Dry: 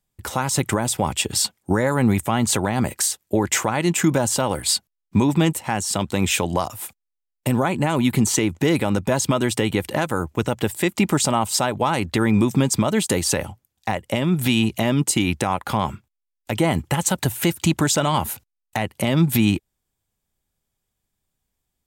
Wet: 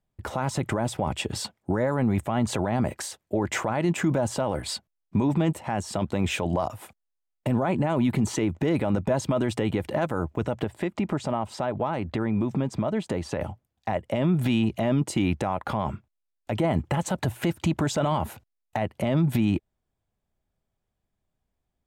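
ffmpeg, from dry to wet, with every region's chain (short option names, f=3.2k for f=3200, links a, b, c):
-filter_complex "[0:a]asettb=1/sr,asplit=3[a][b][c];[a]atrim=end=10.644[d];[b]atrim=start=10.64:end=13.41,asetpts=PTS-STARTPTS,afade=t=in:d=0.004:c=qsin,afade=t=out:st=2.766:d=0.004:c=qsin,lowpass=f=3.7k:p=1,acompressor=threshold=-27dB:ratio=2:attack=3.2:release=140:knee=1:detection=peak[e];[c]atrim=start=13.406[f];[d][e]acrossfade=d=0.004:c1=hsin:c2=qsin[g];[g][f]acrossfade=d=0.004:c1=qsin:c2=hsin,lowpass=f=1.4k:p=1,equalizer=f=640:w=5.1:g=5.5,alimiter=limit=-15dB:level=0:latency=1:release=22"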